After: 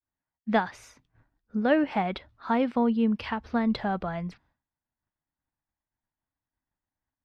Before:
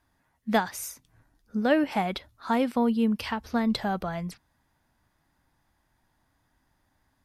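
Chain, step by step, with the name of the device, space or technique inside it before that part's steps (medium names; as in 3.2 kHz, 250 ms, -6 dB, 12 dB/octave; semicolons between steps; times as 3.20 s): hearing-loss simulation (low-pass 3.1 kHz 12 dB/octave; expander -57 dBFS)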